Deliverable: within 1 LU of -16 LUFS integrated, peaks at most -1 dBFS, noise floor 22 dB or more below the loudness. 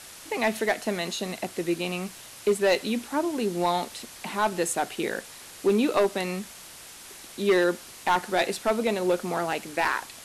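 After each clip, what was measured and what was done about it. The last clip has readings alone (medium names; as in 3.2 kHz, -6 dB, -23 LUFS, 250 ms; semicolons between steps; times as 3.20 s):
clipped samples 0.7%; clipping level -15.5 dBFS; noise floor -45 dBFS; noise floor target -49 dBFS; loudness -27.0 LUFS; peak level -15.5 dBFS; loudness target -16.0 LUFS
-> clip repair -15.5 dBFS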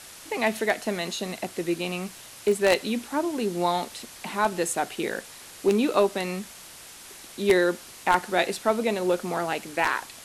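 clipped samples 0.0%; noise floor -45 dBFS; noise floor target -49 dBFS
-> noise reduction 6 dB, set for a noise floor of -45 dBFS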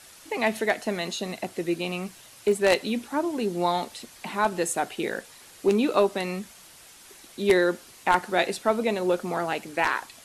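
noise floor -50 dBFS; loudness -26.5 LUFS; peak level -6.5 dBFS; loudness target -16.0 LUFS
-> trim +10.5 dB; peak limiter -1 dBFS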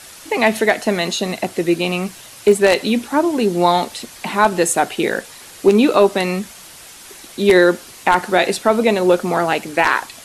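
loudness -16.5 LUFS; peak level -1.0 dBFS; noise floor -40 dBFS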